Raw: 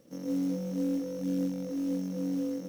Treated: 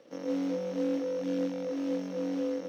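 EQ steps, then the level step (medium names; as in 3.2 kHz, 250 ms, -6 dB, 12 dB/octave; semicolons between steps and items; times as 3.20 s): three-band isolator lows -18 dB, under 370 Hz, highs -23 dB, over 4.7 kHz; +8.0 dB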